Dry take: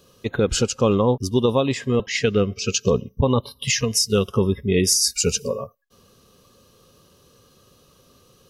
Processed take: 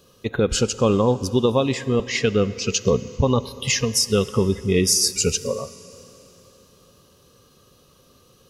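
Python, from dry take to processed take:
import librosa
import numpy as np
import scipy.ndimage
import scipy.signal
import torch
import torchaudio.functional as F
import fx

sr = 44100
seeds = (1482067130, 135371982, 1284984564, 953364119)

y = fx.rev_plate(x, sr, seeds[0], rt60_s=3.6, hf_ratio=0.9, predelay_ms=0, drr_db=15.5)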